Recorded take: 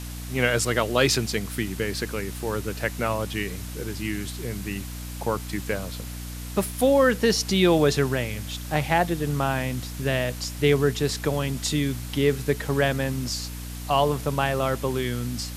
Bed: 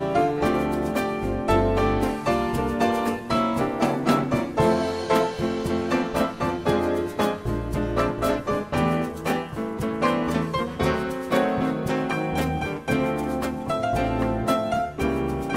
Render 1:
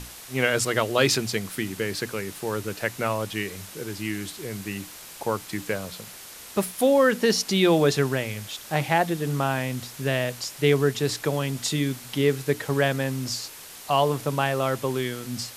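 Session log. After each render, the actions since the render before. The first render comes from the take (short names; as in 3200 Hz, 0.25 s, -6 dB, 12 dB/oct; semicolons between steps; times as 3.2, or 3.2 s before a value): notches 60/120/180/240/300 Hz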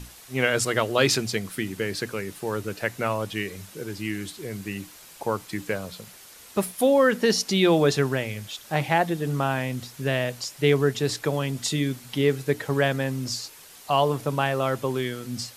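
denoiser 6 dB, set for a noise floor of -43 dBFS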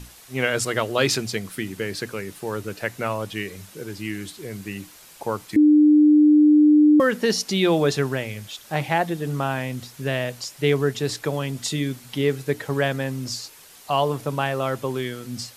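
5.56–7 bleep 300 Hz -10.5 dBFS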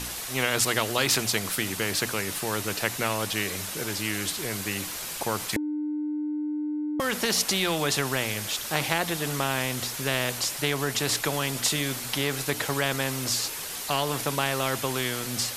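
compressor, threshold -17 dBFS, peak gain reduction 5 dB; spectral compressor 2:1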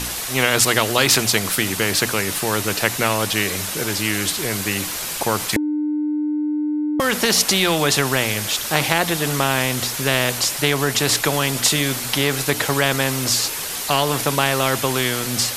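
gain +8 dB; limiter -1 dBFS, peak gain reduction 1.5 dB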